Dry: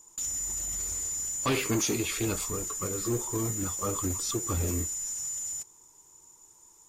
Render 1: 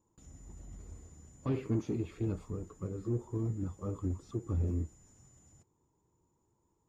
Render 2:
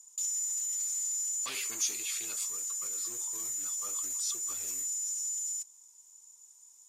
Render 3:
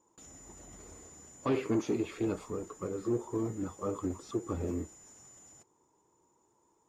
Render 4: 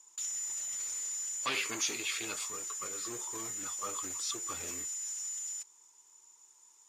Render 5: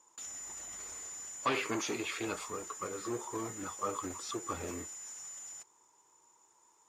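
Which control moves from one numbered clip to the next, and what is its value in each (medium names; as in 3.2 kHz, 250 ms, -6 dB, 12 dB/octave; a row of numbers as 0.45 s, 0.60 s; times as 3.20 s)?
band-pass filter, frequency: 120 Hz, 7.8 kHz, 370 Hz, 3 kHz, 1.2 kHz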